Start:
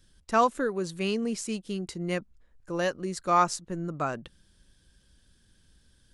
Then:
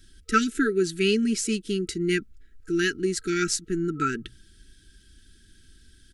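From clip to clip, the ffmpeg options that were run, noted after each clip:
ffmpeg -i in.wav -af "bandreject=frequency=60:width_type=h:width=6,bandreject=frequency=120:width_type=h:width=6,aecho=1:1:3.1:0.41,afftfilt=real='re*(1-between(b*sr/4096,460,1300))':imag='im*(1-between(b*sr/4096,460,1300))':win_size=4096:overlap=0.75,volume=7dB" out.wav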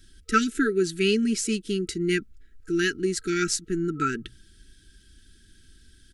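ffmpeg -i in.wav -af anull out.wav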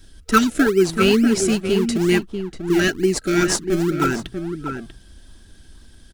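ffmpeg -i in.wav -filter_complex "[0:a]asplit=2[link_01][link_02];[link_02]acrusher=samples=32:mix=1:aa=0.000001:lfo=1:lforange=32:lforate=2.2,volume=-7dB[link_03];[link_01][link_03]amix=inputs=2:normalize=0,asplit=2[link_04][link_05];[link_05]adelay=641.4,volume=-7dB,highshelf=frequency=4000:gain=-14.4[link_06];[link_04][link_06]amix=inputs=2:normalize=0,volume=4.5dB" out.wav

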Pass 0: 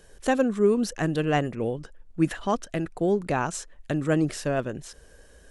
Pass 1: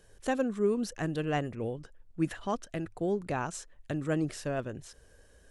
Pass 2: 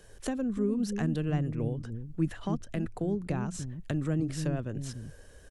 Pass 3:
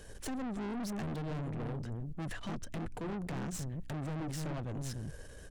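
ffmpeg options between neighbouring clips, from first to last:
ffmpeg -i in.wav -af "equalizer=frequency=99:width_type=o:width=0.27:gain=10,volume=-7dB" out.wav
ffmpeg -i in.wav -filter_complex "[0:a]acrossover=split=250[link_01][link_02];[link_01]aecho=1:1:294:0.668[link_03];[link_02]acompressor=threshold=-41dB:ratio=10[link_04];[link_03][link_04]amix=inputs=2:normalize=0,volume=5.5dB" out.wav
ffmpeg -i in.wav -af "aeval=exprs='(tanh(112*val(0)+0.35)-tanh(0.35))/112':channel_layout=same,aeval=exprs='val(0)+0.000708*(sin(2*PI*60*n/s)+sin(2*PI*2*60*n/s)/2+sin(2*PI*3*60*n/s)/3+sin(2*PI*4*60*n/s)/4+sin(2*PI*5*60*n/s)/5)':channel_layout=same,volume=4.5dB" out.wav

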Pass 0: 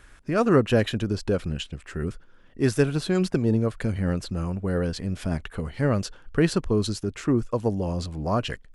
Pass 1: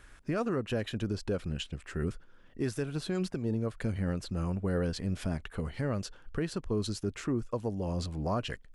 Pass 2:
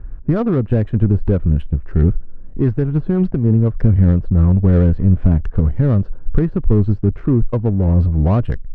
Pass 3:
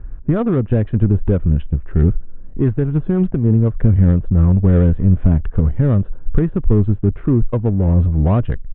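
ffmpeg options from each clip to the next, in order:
ffmpeg -i in.wav -af "alimiter=limit=-18.5dB:level=0:latency=1:release=388,volume=-3.5dB" out.wav
ffmpeg -i in.wav -af "aemphasis=mode=reproduction:type=riaa,adynamicsmooth=sensitivity=3:basefreq=960,volume=9dB" out.wav
ffmpeg -i in.wav -af "aresample=8000,aresample=44100" out.wav

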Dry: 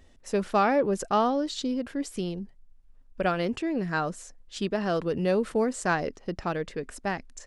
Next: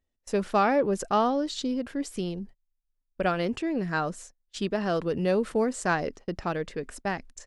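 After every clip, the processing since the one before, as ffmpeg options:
ffmpeg -i in.wav -af "agate=range=-25dB:threshold=-44dB:ratio=16:detection=peak" out.wav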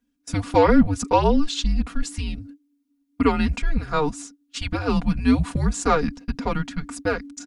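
ffmpeg -i in.wav -af "afreqshift=-300,aecho=1:1:4.2:0.87,volume=4.5dB" out.wav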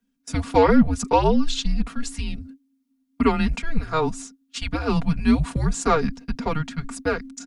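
ffmpeg -i in.wav -af "afreqshift=-17" out.wav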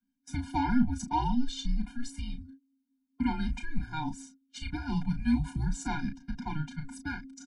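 ffmpeg -i in.wav -filter_complex "[0:a]asplit=2[link_01][link_02];[link_02]adelay=33,volume=-8dB[link_03];[link_01][link_03]amix=inputs=2:normalize=0,afftfilt=real='re*eq(mod(floor(b*sr/1024/350),2),0)':imag='im*eq(mod(floor(b*sr/1024/350),2),0)':win_size=1024:overlap=0.75,volume=-9dB" out.wav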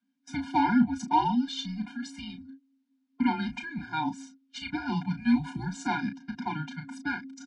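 ffmpeg -i in.wav -af "highpass=230,lowpass=4600,volume=6dB" out.wav

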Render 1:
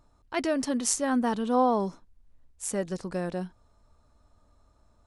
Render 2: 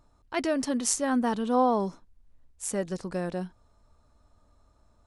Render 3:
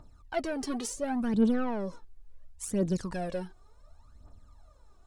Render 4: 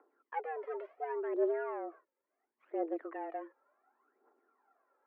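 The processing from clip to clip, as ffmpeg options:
ffmpeg -i in.wav -af anull out.wav
ffmpeg -i in.wav -filter_complex "[0:a]acrossover=split=600[link_01][link_02];[link_02]acompressor=threshold=-38dB:ratio=10[link_03];[link_01][link_03]amix=inputs=2:normalize=0,asoftclip=type=tanh:threshold=-25dB,aphaser=in_gain=1:out_gain=1:delay=2.8:decay=0.7:speed=0.7:type=triangular" out.wav
ffmpeg -i in.wav -af "highpass=frequency=170:width_type=q:width=0.5412,highpass=frequency=170:width_type=q:width=1.307,lowpass=frequency=2100:width_type=q:width=0.5176,lowpass=frequency=2100:width_type=q:width=0.7071,lowpass=frequency=2100:width_type=q:width=1.932,afreqshift=160,volume=-6.5dB" out.wav

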